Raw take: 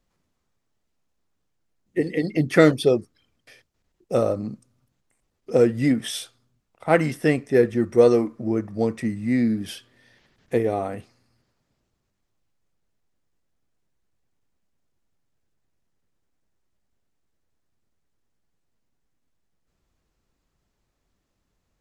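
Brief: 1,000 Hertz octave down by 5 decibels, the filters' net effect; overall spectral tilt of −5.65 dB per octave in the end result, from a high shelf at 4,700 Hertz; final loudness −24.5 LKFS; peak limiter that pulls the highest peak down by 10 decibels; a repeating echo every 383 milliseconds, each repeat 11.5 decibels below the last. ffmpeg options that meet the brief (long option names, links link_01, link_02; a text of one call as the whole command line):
ffmpeg -i in.wav -af "equalizer=frequency=1000:width_type=o:gain=-8.5,highshelf=frequency=4700:gain=6,alimiter=limit=-12.5dB:level=0:latency=1,aecho=1:1:383|766|1149:0.266|0.0718|0.0194,volume=1.5dB" out.wav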